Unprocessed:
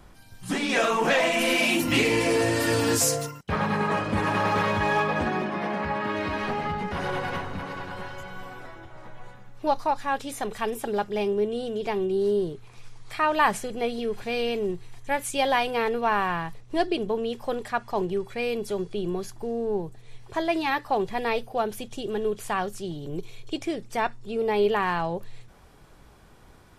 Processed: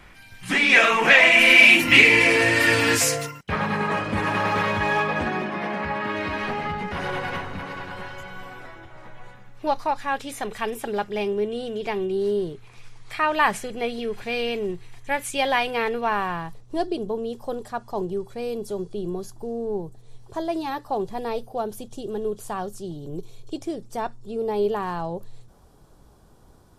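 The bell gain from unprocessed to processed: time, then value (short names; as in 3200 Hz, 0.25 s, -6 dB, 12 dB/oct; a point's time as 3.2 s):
bell 2200 Hz 1.2 oct
2.99 s +14.5 dB
3.62 s +4 dB
15.89 s +4 dB
16.25 s -2.5 dB
16.99 s -13 dB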